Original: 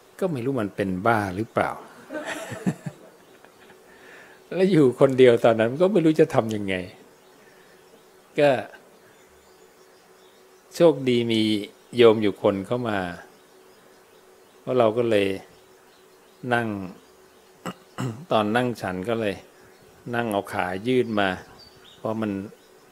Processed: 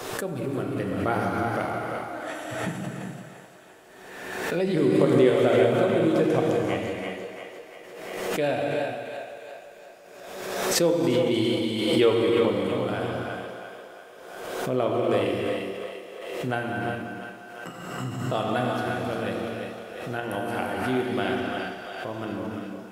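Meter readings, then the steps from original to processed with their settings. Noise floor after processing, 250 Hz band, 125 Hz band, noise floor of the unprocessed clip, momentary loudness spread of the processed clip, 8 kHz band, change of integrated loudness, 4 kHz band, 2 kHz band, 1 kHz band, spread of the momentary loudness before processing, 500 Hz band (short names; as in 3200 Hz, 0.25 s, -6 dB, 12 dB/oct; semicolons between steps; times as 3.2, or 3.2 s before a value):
-46 dBFS, -2.0 dB, -1.0 dB, -54 dBFS, 19 LU, n/a, -3.0 dB, -0.5 dB, -1.5 dB, -1.5 dB, 19 LU, -2.5 dB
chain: split-band echo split 400 Hz, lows 0.114 s, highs 0.345 s, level -7 dB; non-linear reverb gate 0.43 s flat, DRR -1.5 dB; backwards sustainer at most 38 dB/s; gain -8 dB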